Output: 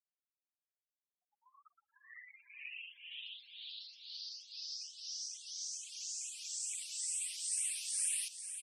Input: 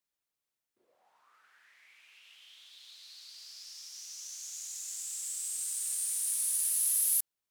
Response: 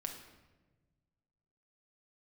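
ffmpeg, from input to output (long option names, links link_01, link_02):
-filter_complex "[0:a]afftfilt=real='re*gte(hypot(re,im),0.00158)':imag='im*gte(hypot(re,im),0.00158)':win_size=1024:overlap=0.75,bandreject=frequency=1700:width=9.8,afftfilt=real='re*gte(hypot(re,im),0.00355)':imag='im*gte(hypot(re,im),0.00355)':win_size=1024:overlap=0.75,highshelf=frequency=5000:gain=-9,asplit=2[link_01][link_02];[link_02]acompressor=threshold=-55dB:ratio=20,volume=-2dB[link_03];[link_01][link_03]amix=inputs=2:normalize=0,asetrate=38367,aresample=44100,highpass=frequency=270:width=0.5412,highpass=frequency=270:width=1.3066,equalizer=frequency=410:width_type=q:width=4:gain=-10,equalizer=frequency=800:width_type=q:width=4:gain=-9,equalizer=frequency=1100:width_type=q:width=4:gain=-4,equalizer=frequency=2600:width_type=q:width=4:gain=5,equalizer=frequency=3900:width_type=q:width=4:gain=-5,equalizer=frequency=6900:width_type=q:width=4:gain=-9,lowpass=frequency=8500:width=0.5412,lowpass=frequency=8500:width=1.3066,asplit=2[link_04][link_05];[link_05]aecho=0:1:499|998|1497|1996:0.316|0.114|0.041|0.0148[link_06];[link_04][link_06]amix=inputs=2:normalize=0,asplit=2[link_07][link_08];[link_08]afreqshift=2.2[link_09];[link_07][link_09]amix=inputs=2:normalize=1,volume=7.5dB"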